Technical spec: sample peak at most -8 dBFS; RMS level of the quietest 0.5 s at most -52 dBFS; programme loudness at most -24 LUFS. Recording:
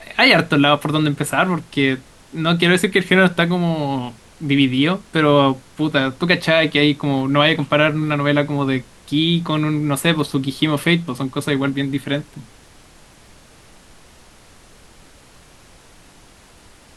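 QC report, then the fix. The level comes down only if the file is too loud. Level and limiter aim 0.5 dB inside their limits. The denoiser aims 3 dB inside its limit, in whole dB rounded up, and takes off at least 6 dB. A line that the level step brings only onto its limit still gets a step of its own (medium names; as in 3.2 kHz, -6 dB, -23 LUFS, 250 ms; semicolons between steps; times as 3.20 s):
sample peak -1.5 dBFS: fail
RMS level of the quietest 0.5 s -47 dBFS: fail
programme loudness -17.5 LUFS: fail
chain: trim -7 dB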